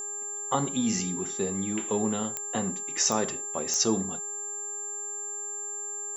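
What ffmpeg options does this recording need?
ffmpeg -i in.wav -af "adeclick=threshold=4,bandreject=frequency=408.7:width_type=h:width=4,bandreject=frequency=817.4:width_type=h:width=4,bandreject=frequency=1226.1:width_type=h:width=4,bandreject=frequency=1634.8:width_type=h:width=4,bandreject=frequency=7300:width=30" out.wav

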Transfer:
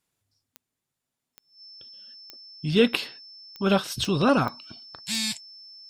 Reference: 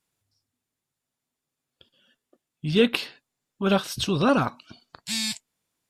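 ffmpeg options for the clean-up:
ffmpeg -i in.wav -af "adeclick=threshold=4,bandreject=frequency=5300:width=30" out.wav

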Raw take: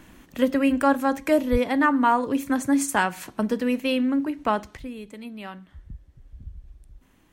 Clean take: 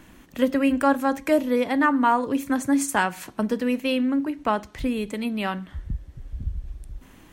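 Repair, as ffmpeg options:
ffmpeg -i in.wav -filter_complex "[0:a]asplit=3[link_01][link_02][link_03];[link_01]afade=type=out:start_time=1.51:duration=0.02[link_04];[link_02]highpass=frequency=140:width=0.5412,highpass=frequency=140:width=1.3066,afade=type=in:start_time=1.51:duration=0.02,afade=type=out:start_time=1.63:duration=0.02[link_05];[link_03]afade=type=in:start_time=1.63:duration=0.02[link_06];[link_04][link_05][link_06]amix=inputs=3:normalize=0,asetnsamples=nb_out_samples=441:pad=0,asendcmd='4.77 volume volume 10.5dB',volume=0dB" out.wav

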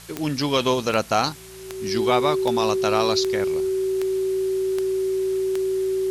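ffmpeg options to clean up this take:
ffmpeg -i in.wav -af "adeclick=threshold=4,bandreject=frequency=56.5:width_type=h:width=4,bandreject=frequency=113:width_type=h:width=4,bandreject=frequency=169.5:width_type=h:width=4,bandreject=frequency=380:width=30,afwtdn=0.0071" out.wav

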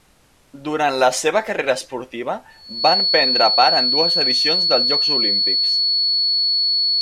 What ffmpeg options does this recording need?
ffmpeg -i in.wav -af "bandreject=frequency=4400:width=30,agate=range=-21dB:threshold=-39dB" out.wav

